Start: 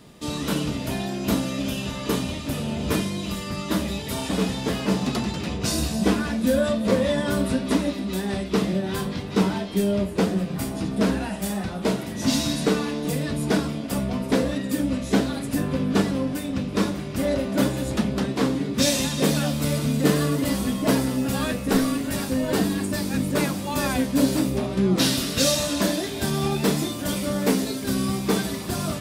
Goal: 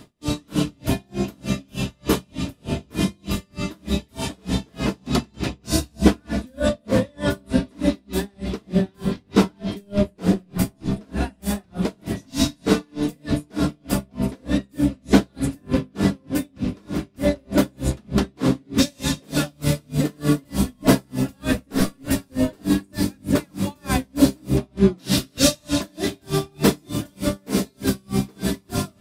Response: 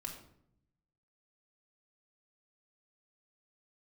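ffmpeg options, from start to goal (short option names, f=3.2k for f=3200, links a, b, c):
-filter_complex "[0:a]asplit=2[a][b];[1:a]atrim=start_sample=2205,lowshelf=f=280:g=8.5[c];[b][c]afir=irnorm=-1:irlink=0,volume=-3dB[d];[a][d]amix=inputs=2:normalize=0,aeval=exprs='val(0)*pow(10,-38*(0.5-0.5*cos(2*PI*3.3*n/s))/20)':c=same,volume=2.5dB"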